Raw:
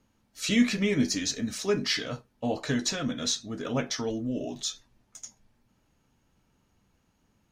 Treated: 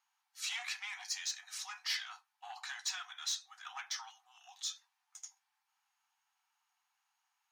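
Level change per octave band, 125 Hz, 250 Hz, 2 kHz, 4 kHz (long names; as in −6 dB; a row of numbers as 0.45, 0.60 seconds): below −40 dB, below −40 dB, −8.0 dB, −7.5 dB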